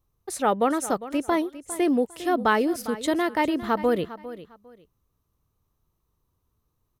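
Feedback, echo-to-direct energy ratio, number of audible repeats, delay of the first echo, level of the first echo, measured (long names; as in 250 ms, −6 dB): 23%, −15.0 dB, 2, 403 ms, −15.0 dB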